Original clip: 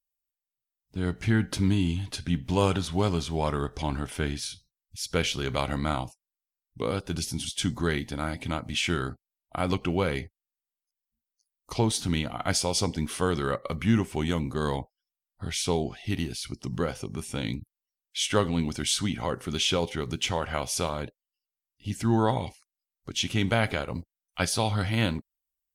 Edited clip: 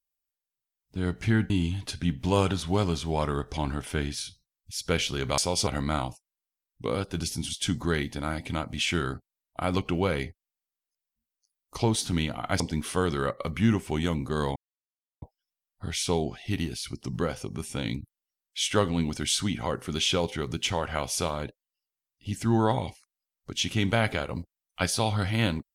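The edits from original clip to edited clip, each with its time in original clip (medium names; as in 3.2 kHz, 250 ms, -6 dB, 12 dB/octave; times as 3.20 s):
1.50–1.75 s: delete
12.56–12.85 s: move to 5.63 s
14.81 s: insert silence 0.66 s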